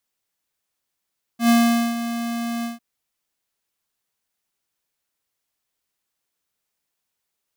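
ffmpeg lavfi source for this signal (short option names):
-f lavfi -i "aevalsrc='0.2*(2*lt(mod(234*t,1),0.5)-1)':d=1.4:s=44100,afade=t=in:d=0.1,afade=t=out:st=0.1:d=0.454:silence=0.251,afade=t=out:st=1.25:d=0.15"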